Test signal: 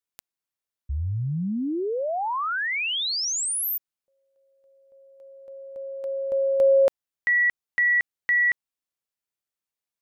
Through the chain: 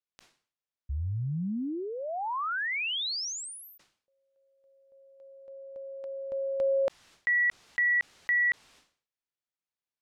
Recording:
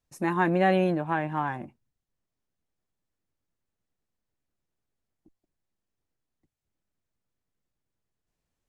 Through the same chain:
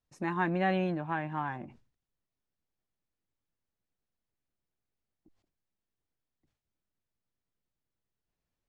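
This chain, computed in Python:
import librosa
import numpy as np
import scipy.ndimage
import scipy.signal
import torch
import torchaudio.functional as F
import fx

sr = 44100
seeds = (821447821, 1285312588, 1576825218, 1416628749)

y = fx.dynamic_eq(x, sr, hz=480.0, q=1.4, threshold_db=-36.0, ratio=4.0, max_db=-5)
y = scipy.signal.sosfilt(scipy.signal.butter(2, 5500.0, 'lowpass', fs=sr, output='sos'), y)
y = fx.sustainer(y, sr, db_per_s=130.0)
y = y * 10.0 ** (-4.5 / 20.0)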